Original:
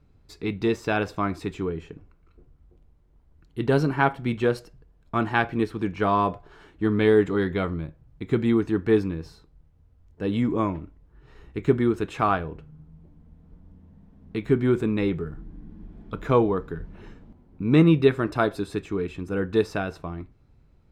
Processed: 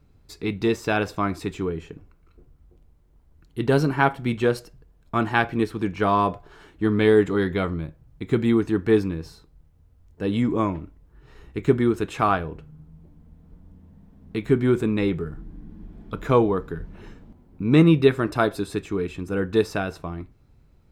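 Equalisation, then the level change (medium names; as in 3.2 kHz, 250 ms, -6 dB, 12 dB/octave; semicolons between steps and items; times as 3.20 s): treble shelf 6.6 kHz +7.5 dB; +1.5 dB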